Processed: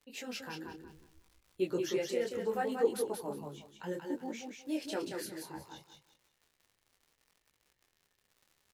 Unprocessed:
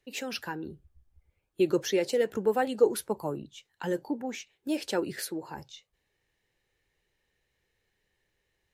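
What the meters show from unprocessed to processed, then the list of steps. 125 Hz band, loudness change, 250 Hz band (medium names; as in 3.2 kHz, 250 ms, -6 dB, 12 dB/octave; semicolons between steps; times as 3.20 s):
-6.5 dB, -6.5 dB, -6.0 dB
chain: crackle 48 per s -41 dBFS; feedback delay 182 ms, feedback 26%, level -4.5 dB; detune thickener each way 23 cents; trim -4 dB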